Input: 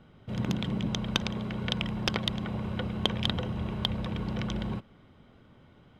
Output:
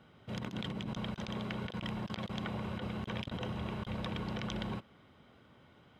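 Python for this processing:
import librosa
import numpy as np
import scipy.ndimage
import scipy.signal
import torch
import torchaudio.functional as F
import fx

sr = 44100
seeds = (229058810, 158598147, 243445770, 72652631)

y = scipy.signal.sosfilt(scipy.signal.butter(2, 53.0, 'highpass', fs=sr, output='sos'), x)
y = fx.low_shelf(y, sr, hz=410.0, db=-7.0)
y = fx.over_compress(y, sr, threshold_db=-37.0, ratio=-0.5)
y = y * librosa.db_to_amplitude(-1.5)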